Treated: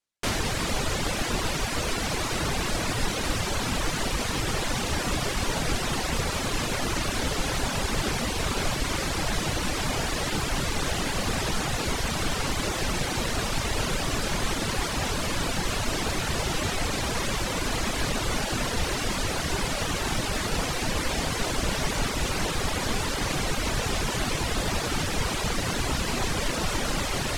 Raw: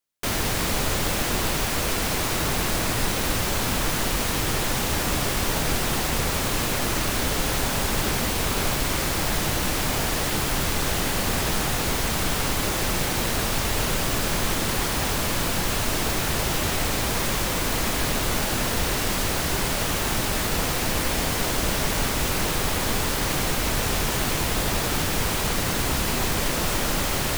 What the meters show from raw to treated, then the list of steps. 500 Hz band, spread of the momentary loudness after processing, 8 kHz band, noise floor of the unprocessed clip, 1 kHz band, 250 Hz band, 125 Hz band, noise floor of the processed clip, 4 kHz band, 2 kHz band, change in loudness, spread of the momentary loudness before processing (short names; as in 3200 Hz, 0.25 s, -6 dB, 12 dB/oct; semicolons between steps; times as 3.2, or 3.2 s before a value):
-2.5 dB, 0 LU, -4.5 dB, -26 dBFS, -2.5 dB, -2.5 dB, -2.5 dB, -30 dBFS, -2.5 dB, -2.5 dB, -4.0 dB, 0 LU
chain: LPF 8600 Hz 12 dB/oct; reverb removal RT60 0.9 s